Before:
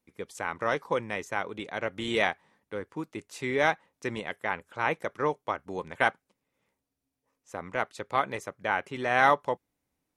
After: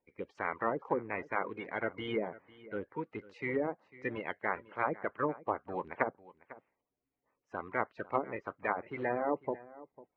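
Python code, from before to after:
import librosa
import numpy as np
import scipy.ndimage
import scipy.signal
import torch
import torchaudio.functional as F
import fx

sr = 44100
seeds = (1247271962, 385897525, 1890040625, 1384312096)

y = fx.spec_quant(x, sr, step_db=30)
y = fx.air_absorb(y, sr, metres=230.0)
y = fx.notch(y, sr, hz=3500.0, q=10.0)
y = fx.env_lowpass_down(y, sr, base_hz=470.0, full_db=-24.0)
y = fx.bass_treble(y, sr, bass_db=-8, treble_db=-11)
y = y + 10.0 ** (-19.0 / 20.0) * np.pad(y, (int(499 * sr / 1000.0), 0))[:len(y)]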